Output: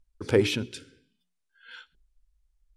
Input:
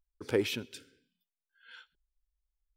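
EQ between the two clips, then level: LPF 11000 Hz 24 dB/oct; low shelf 170 Hz +9.5 dB; notches 60/120/180/240/300/360/420 Hz; +6.0 dB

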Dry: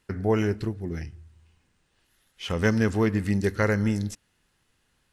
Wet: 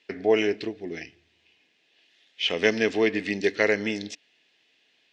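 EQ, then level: speaker cabinet 270–5700 Hz, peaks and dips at 290 Hz +8 dB, 430 Hz +7 dB, 670 Hz +10 dB, 1700 Hz +9 dB, 3500 Hz +4 dB; resonant high shelf 1900 Hz +7.5 dB, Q 3; -3.0 dB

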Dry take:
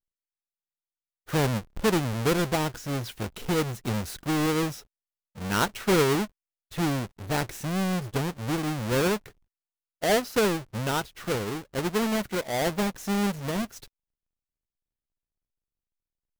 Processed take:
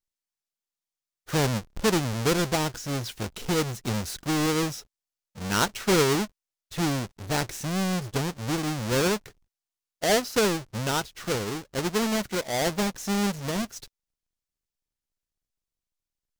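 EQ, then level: bell 5900 Hz +5.5 dB 1.4 oct; 0.0 dB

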